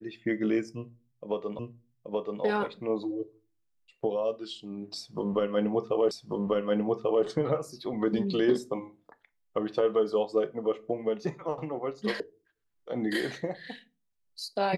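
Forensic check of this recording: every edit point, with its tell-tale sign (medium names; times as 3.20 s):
1.59 s: repeat of the last 0.83 s
6.11 s: repeat of the last 1.14 s
12.20 s: sound stops dead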